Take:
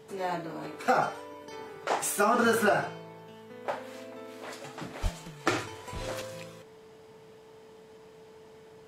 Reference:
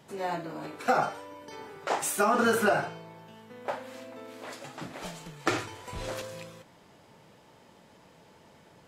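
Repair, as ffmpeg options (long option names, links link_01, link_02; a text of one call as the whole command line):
ffmpeg -i in.wav -filter_complex "[0:a]bandreject=frequency=440:width=30,asplit=3[link_01][link_02][link_03];[link_01]afade=type=out:start_time=5.02:duration=0.02[link_04];[link_02]highpass=frequency=140:width=0.5412,highpass=frequency=140:width=1.3066,afade=type=in:start_time=5.02:duration=0.02,afade=type=out:start_time=5.14:duration=0.02[link_05];[link_03]afade=type=in:start_time=5.14:duration=0.02[link_06];[link_04][link_05][link_06]amix=inputs=3:normalize=0" out.wav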